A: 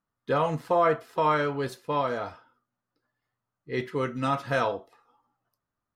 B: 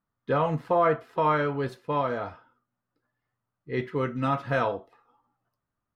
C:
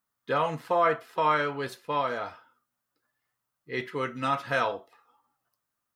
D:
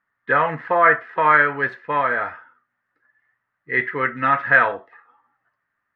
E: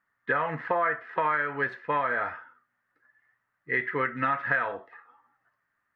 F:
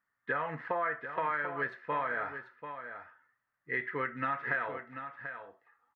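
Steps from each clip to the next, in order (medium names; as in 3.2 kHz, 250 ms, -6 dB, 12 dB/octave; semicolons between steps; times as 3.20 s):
tone controls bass +3 dB, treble -11 dB
tilt EQ +3 dB/octave
resonant low-pass 1.8 kHz, resonance Q 6; trim +4.5 dB
compression 6:1, threshold -22 dBFS, peak gain reduction 12.5 dB; trim -1.5 dB
delay 739 ms -9.5 dB; trim -6.5 dB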